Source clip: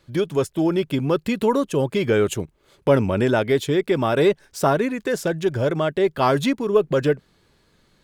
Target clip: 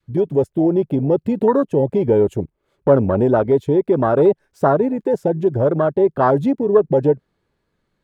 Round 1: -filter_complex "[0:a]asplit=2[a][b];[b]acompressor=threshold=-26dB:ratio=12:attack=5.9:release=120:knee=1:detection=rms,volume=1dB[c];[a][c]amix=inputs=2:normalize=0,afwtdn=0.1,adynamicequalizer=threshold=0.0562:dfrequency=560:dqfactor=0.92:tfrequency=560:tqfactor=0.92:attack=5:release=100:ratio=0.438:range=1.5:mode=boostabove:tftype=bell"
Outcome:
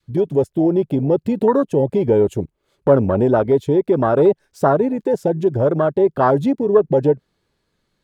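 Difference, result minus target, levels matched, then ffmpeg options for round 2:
4000 Hz band +3.5 dB
-filter_complex "[0:a]asplit=2[a][b];[b]acompressor=threshold=-26dB:ratio=12:attack=5.9:release=120:knee=1:detection=rms,lowpass=2.9k,volume=1dB[c];[a][c]amix=inputs=2:normalize=0,afwtdn=0.1,adynamicequalizer=threshold=0.0562:dfrequency=560:dqfactor=0.92:tfrequency=560:tqfactor=0.92:attack=5:release=100:ratio=0.438:range=1.5:mode=boostabove:tftype=bell"

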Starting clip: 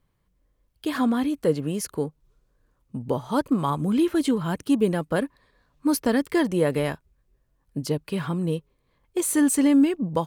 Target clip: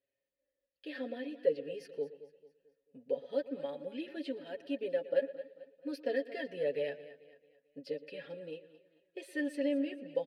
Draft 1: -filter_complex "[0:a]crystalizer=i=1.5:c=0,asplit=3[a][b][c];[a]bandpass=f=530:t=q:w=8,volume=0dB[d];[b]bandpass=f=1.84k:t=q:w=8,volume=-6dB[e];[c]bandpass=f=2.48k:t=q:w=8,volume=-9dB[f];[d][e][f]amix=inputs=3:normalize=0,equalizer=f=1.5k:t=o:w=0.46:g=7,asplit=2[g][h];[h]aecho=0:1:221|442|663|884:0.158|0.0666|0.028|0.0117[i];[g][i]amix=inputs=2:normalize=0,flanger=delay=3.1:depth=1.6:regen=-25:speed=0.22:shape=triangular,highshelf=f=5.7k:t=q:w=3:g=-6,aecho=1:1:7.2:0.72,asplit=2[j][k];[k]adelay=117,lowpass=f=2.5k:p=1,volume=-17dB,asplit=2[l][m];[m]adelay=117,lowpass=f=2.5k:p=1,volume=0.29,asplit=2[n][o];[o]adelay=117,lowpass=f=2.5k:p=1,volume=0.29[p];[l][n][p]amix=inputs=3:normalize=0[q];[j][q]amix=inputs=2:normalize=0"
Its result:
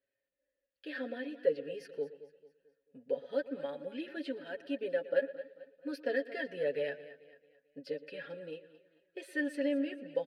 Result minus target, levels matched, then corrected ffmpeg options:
2000 Hz band +4.0 dB
-filter_complex "[0:a]crystalizer=i=1.5:c=0,asplit=3[a][b][c];[a]bandpass=f=530:t=q:w=8,volume=0dB[d];[b]bandpass=f=1.84k:t=q:w=8,volume=-6dB[e];[c]bandpass=f=2.48k:t=q:w=8,volume=-9dB[f];[d][e][f]amix=inputs=3:normalize=0,equalizer=f=1.5k:t=o:w=0.46:g=-3,asplit=2[g][h];[h]aecho=0:1:221|442|663|884:0.158|0.0666|0.028|0.0117[i];[g][i]amix=inputs=2:normalize=0,flanger=delay=3.1:depth=1.6:regen=-25:speed=0.22:shape=triangular,highshelf=f=5.7k:t=q:w=3:g=-6,aecho=1:1:7.2:0.72,asplit=2[j][k];[k]adelay=117,lowpass=f=2.5k:p=1,volume=-17dB,asplit=2[l][m];[m]adelay=117,lowpass=f=2.5k:p=1,volume=0.29,asplit=2[n][o];[o]adelay=117,lowpass=f=2.5k:p=1,volume=0.29[p];[l][n][p]amix=inputs=3:normalize=0[q];[j][q]amix=inputs=2:normalize=0"

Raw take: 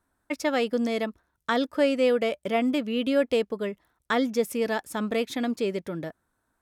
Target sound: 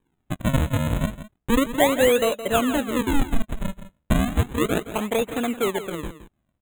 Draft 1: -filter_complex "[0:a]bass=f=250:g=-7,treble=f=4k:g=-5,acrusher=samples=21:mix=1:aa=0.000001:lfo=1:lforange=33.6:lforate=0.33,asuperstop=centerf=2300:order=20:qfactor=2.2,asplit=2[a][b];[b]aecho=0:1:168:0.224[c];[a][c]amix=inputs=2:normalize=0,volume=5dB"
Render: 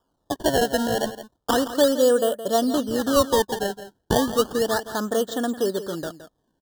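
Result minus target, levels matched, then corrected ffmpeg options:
decimation with a swept rate: distortion -9 dB; 2000 Hz band -3.0 dB
-filter_complex "[0:a]bass=f=250:g=-7,treble=f=4k:g=-5,acrusher=samples=64:mix=1:aa=0.000001:lfo=1:lforange=102:lforate=0.33,asuperstop=centerf=5100:order=20:qfactor=2.2,asplit=2[a][b];[b]aecho=0:1:168:0.224[c];[a][c]amix=inputs=2:normalize=0,volume=5dB"

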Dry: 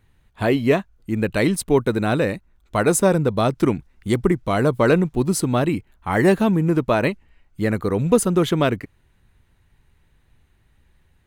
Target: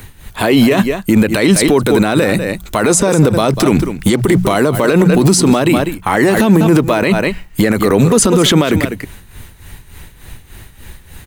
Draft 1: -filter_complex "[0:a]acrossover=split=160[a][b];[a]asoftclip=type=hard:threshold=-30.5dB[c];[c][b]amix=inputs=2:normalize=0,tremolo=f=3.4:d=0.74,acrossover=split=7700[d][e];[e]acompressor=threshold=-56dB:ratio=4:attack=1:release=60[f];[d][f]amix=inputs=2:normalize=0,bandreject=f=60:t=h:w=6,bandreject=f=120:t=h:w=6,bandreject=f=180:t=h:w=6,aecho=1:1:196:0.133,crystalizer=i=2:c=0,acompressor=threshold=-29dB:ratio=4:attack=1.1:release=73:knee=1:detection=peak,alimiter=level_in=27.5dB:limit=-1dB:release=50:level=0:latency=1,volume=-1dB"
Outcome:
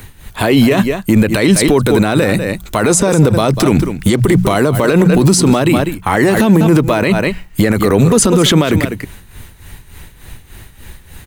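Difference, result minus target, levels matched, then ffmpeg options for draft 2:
hard clip: distortion -5 dB
-filter_complex "[0:a]acrossover=split=160[a][b];[a]asoftclip=type=hard:threshold=-39dB[c];[c][b]amix=inputs=2:normalize=0,tremolo=f=3.4:d=0.74,acrossover=split=7700[d][e];[e]acompressor=threshold=-56dB:ratio=4:attack=1:release=60[f];[d][f]amix=inputs=2:normalize=0,bandreject=f=60:t=h:w=6,bandreject=f=120:t=h:w=6,bandreject=f=180:t=h:w=6,aecho=1:1:196:0.133,crystalizer=i=2:c=0,acompressor=threshold=-29dB:ratio=4:attack=1.1:release=73:knee=1:detection=peak,alimiter=level_in=27.5dB:limit=-1dB:release=50:level=0:latency=1,volume=-1dB"

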